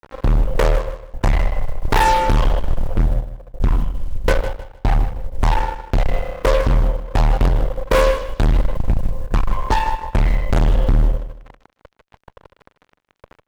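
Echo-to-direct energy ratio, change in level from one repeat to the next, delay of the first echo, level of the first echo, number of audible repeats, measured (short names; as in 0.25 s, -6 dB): -12.0 dB, -11.5 dB, 0.155 s, -12.5 dB, 2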